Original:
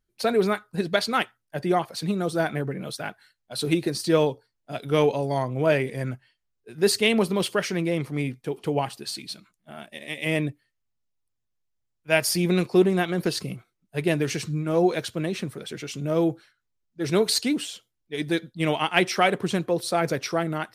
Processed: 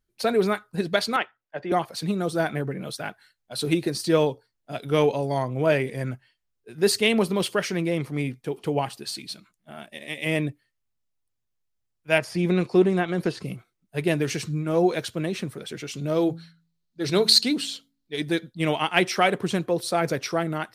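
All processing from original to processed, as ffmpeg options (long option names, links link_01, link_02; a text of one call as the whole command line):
ffmpeg -i in.wav -filter_complex "[0:a]asettb=1/sr,asplit=3[link_01][link_02][link_03];[link_01]atrim=end=1.164[link_04];[link_02]atrim=start=1.16:end=1.72,asetpts=PTS-STARTPTS,afade=type=in:duration=0.004:curve=qsin,afade=type=out:start_time=0.556:duration=0.004:curve=qsin,lowpass=frequency=6800:width=0.5412,lowpass=frequency=6800:width=1.3066,acrossover=split=350 3200:gain=0.251 1 0.178[link_05][link_06][link_07];[link_05][link_06][link_07]amix=inputs=3:normalize=0[link_08];[link_03]atrim=start=1.716[link_09];[link_04][link_08]acrossfade=duration=0.004:curve1=hsin:curve2=qsin[link_10];[link_10][link_09]acrossfade=duration=0.004:curve1=qsin:curve2=hsin,asettb=1/sr,asplit=3[link_11][link_12][link_13];[link_11]atrim=end=12.184[link_14];[link_12]atrim=start=12.18:end=13.46,asetpts=PTS-STARTPTS,afade=type=in:duration=0.004:curve=qsin,afade=type=out:start_time=1.276:duration=0.004:curve=qsin,lowpass=9300,acrossover=split=2500[link_15][link_16];[link_16]acompressor=threshold=-41dB:ratio=4:attack=1:release=60[link_17];[link_15][link_17]amix=inputs=2:normalize=0[link_18];[link_13]atrim=start=13.456[link_19];[link_14][link_18]acrossfade=duration=0.004:curve1=hsin:curve2=qsin[link_20];[link_20][link_19]acrossfade=duration=0.004:curve1=qsin:curve2=hsin,asettb=1/sr,asplit=3[link_21][link_22][link_23];[link_21]atrim=end=15.964[link_24];[link_22]atrim=start=15.96:end=18.2,asetpts=PTS-STARTPTS,afade=type=in:duration=0.004:curve=qsin,afade=type=out:start_time=2.236:duration=0.004:curve=qsin,equalizer=frequency=4200:width=3.1:gain=10,bandreject=frequency=55.23:width_type=h:width=4,bandreject=frequency=110.46:width_type=h:width=4,bandreject=frequency=165.69:width_type=h:width=4,bandreject=frequency=220.92:width_type=h:width=4,bandreject=frequency=276.15:width_type=h:width=4[link_25];[link_23]atrim=start=18.196[link_26];[link_24][link_25]acrossfade=duration=0.004:curve1=hsin:curve2=qsin[link_27];[link_27][link_26]acrossfade=duration=0.004:curve1=qsin:curve2=hsin" out.wav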